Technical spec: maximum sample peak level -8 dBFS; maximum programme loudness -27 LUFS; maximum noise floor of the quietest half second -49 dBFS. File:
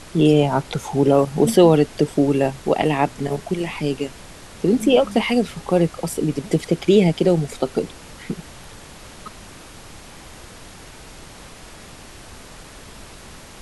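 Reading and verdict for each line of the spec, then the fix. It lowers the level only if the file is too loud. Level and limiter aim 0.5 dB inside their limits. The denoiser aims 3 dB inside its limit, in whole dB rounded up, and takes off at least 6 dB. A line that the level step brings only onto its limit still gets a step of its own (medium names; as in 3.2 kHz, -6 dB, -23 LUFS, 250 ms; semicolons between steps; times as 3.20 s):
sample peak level -2.5 dBFS: fail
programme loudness -19.0 LUFS: fail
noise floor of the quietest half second -41 dBFS: fail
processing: trim -8.5 dB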